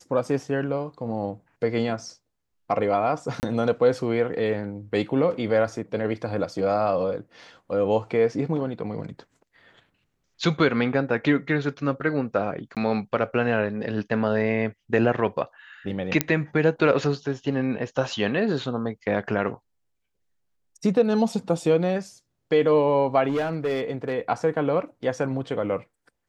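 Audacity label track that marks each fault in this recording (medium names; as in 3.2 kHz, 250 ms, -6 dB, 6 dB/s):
3.400000	3.430000	dropout 29 ms
12.750000	12.770000	dropout 17 ms
16.210000	16.210000	pop -3 dBFS
23.280000	24.130000	clipped -20.5 dBFS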